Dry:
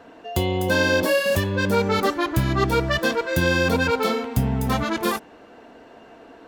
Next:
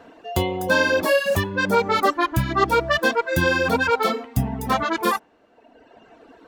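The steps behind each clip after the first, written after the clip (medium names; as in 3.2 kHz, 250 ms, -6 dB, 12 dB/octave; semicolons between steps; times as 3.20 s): reverb removal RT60 1.4 s; dynamic bell 1 kHz, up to +6 dB, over -36 dBFS, Q 0.76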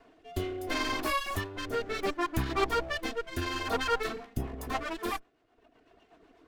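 comb filter that takes the minimum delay 2.8 ms; rotary cabinet horn 0.7 Hz, later 8 Hz, at 3.80 s; trim -7.5 dB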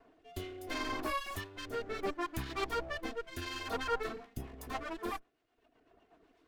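harmonic tremolo 1 Hz, depth 50%, crossover 1.8 kHz; trim -4 dB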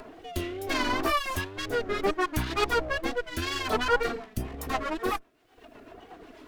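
in parallel at -0.5 dB: upward compressor, threshold -40 dBFS; on the sum: wow and flutter 110 cents; trim +4 dB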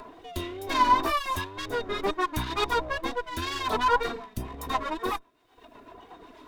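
small resonant body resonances 1/3.7 kHz, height 16 dB, ringing for 60 ms; trim -2 dB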